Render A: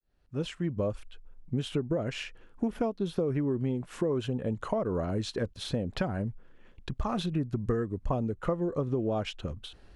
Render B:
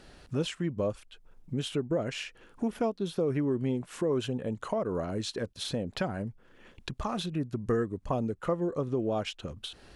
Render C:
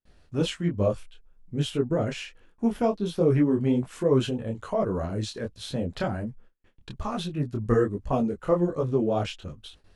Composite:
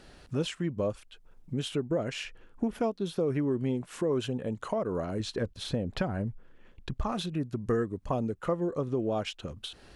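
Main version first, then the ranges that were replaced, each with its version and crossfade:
B
2.25–2.74 s: from A
5.20–7.12 s: from A
not used: C

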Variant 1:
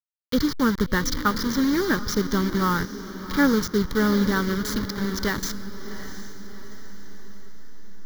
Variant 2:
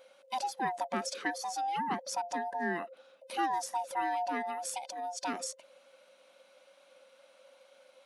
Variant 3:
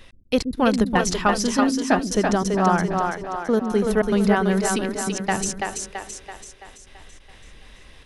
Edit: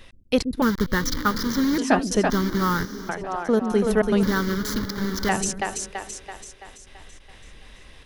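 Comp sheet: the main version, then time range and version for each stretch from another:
3
0.62–1.78 s: from 1
2.30–3.09 s: from 1
4.23–5.29 s: from 1
not used: 2

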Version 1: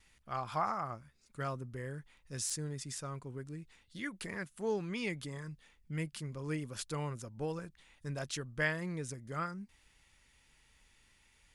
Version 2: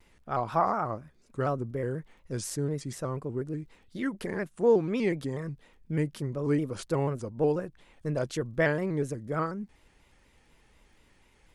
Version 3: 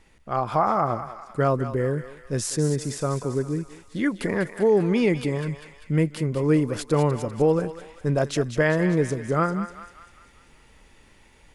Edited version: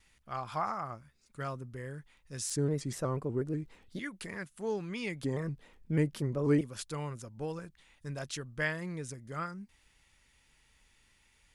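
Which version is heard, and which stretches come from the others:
1
2.56–3.99 s: from 2
5.23–6.61 s: from 2
not used: 3

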